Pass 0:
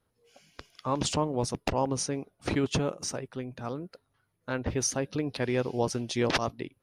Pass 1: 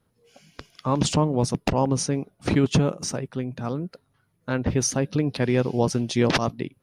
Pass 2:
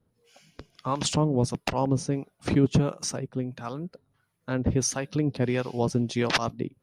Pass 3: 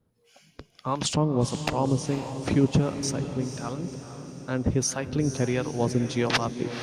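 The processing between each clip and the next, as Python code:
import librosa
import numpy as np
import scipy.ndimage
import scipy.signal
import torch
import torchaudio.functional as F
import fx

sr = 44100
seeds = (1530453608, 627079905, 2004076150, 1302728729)

y1 = fx.peak_eq(x, sr, hz=170.0, db=7.5, octaves=1.3)
y1 = F.gain(torch.from_numpy(y1), 4.0).numpy()
y2 = fx.harmonic_tremolo(y1, sr, hz=1.5, depth_pct=70, crossover_hz=680.0)
y3 = fx.echo_diffused(y2, sr, ms=486, feedback_pct=55, wet_db=-10)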